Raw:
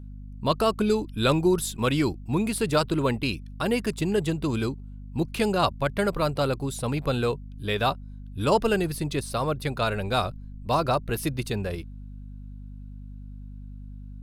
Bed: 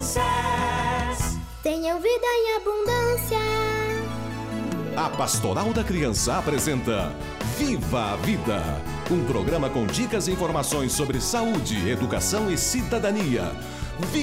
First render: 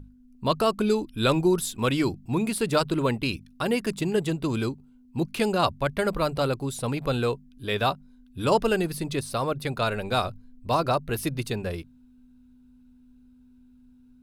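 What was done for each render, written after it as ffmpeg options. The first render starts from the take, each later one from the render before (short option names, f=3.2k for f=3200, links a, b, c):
-af "bandreject=f=50:t=h:w=6,bandreject=f=100:t=h:w=6,bandreject=f=150:t=h:w=6,bandreject=f=200:t=h:w=6"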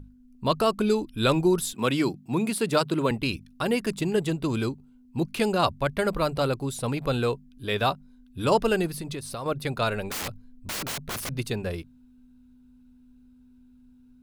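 -filter_complex "[0:a]asettb=1/sr,asplit=3[a][b][c];[a]atrim=end=1.734[d];[b]atrim=start=1.73:end=3.11,asetpts=PTS-STARTPTS,afade=t=in:d=0.004:c=qsin,afade=t=out:st=1.376:d=0.004:c=qsin,highpass=f=130:w=0.5412,highpass=f=130:w=1.3066[e];[c]atrim=start=3.106[f];[d][e]acrossfade=d=0.004:c1=hsin:c2=qsin[g];[g][f]acrossfade=d=0.004:c1=qsin:c2=hsin,asettb=1/sr,asplit=3[h][i][j];[h]atrim=end=8.874[k];[i]atrim=start=8.87:end=9.46,asetpts=PTS-STARTPTS,afade=t=in:d=0.004:c=qsin,afade=t=out:st=0.586:d=0.004:c=qsin,acompressor=threshold=-30dB:ratio=6:attack=3.2:release=140:knee=1:detection=peak[l];[j]atrim=start=9.456[m];[k][l]acrossfade=d=0.004:c1=hsin:c2=qsin[n];[n][m]acrossfade=d=0.004:c1=qsin:c2=hsin,asettb=1/sr,asplit=3[o][p][q];[o]atrim=end=10.104[r];[p]atrim=start=10.1:end=11.32,asetpts=PTS-STARTPTS,afade=t=in:d=0.004:c=qsin,afade=t=out:st=1.216:d=0.004:c=qsin,aeval=exprs='(mod(22.4*val(0)+1,2)-1)/22.4':c=same[s];[q]atrim=start=11.316[t];[r][s]acrossfade=d=0.004:c1=hsin:c2=qsin[u];[u][t]acrossfade=d=0.004:c1=qsin:c2=hsin"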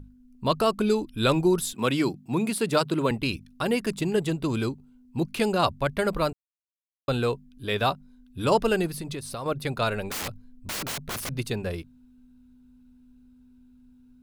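-filter_complex "[0:a]asplit=3[a][b][c];[a]atrim=end=6.33,asetpts=PTS-STARTPTS,afade=t=out:st=6.326:d=0.004:c=hsin[d];[b]atrim=start=6.33:end=7.08,asetpts=PTS-STARTPTS,volume=0[e];[c]atrim=start=7.08,asetpts=PTS-STARTPTS,afade=t=in:d=0.004:c=hsin[f];[d][e][f]concat=n=3:v=0:a=1"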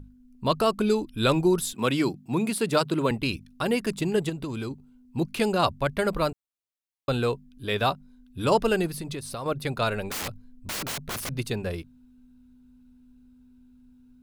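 -filter_complex "[0:a]asettb=1/sr,asplit=3[a][b][c];[a]atrim=end=4.294[d];[b]atrim=start=4.29:end=4.71,asetpts=PTS-STARTPTS,afade=t=in:d=0.004:c=qsin,afade=t=out:st=0.416:d=0.004:c=qsin,acompressor=threshold=-28dB:ratio=6:attack=3.2:release=140:knee=1:detection=peak[e];[c]atrim=start=4.706[f];[d][e]acrossfade=d=0.004:c1=hsin:c2=qsin[g];[g][f]acrossfade=d=0.004:c1=qsin:c2=hsin"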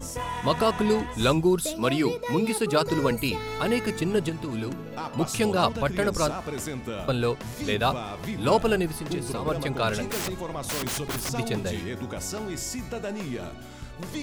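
-filter_complex "[1:a]volume=-9dB[a];[0:a][a]amix=inputs=2:normalize=0"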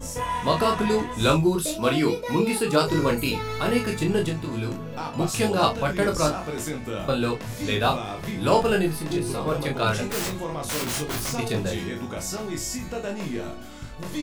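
-filter_complex "[0:a]asplit=2[a][b];[b]adelay=26,volume=-11dB[c];[a][c]amix=inputs=2:normalize=0,aecho=1:1:20|37:0.562|0.473"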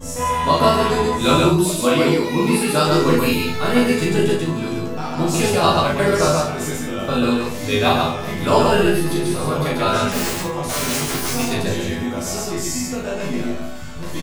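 -filter_complex "[0:a]asplit=2[a][b];[b]adelay=12,volume=-2dB[c];[a][c]amix=inputs=2:normalize=0,aecho=1:1:40.82|137|198.3:0.891|0.891|0.398"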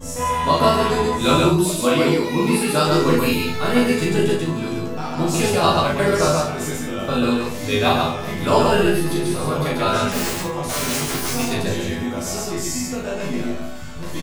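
-af "volume=-1dB"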